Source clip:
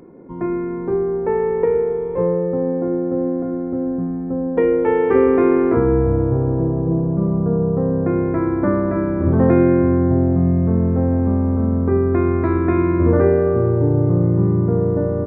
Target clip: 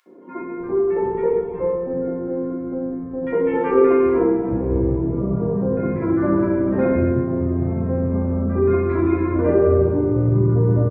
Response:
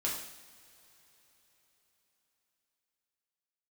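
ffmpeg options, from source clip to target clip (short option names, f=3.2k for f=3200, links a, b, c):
-filter_complex "[0:a]atempo=1.4,acrossover=split=190|1300[a][b][c];[b]adelay=60[d];[a]adelay=380[e];[e][d][c]amix=inputs=3:normalize=0[f];[1:a]atrim=start_sample=2205[g];[f][g]afir=irnorm=-1:irlink=0,volume=-4dB"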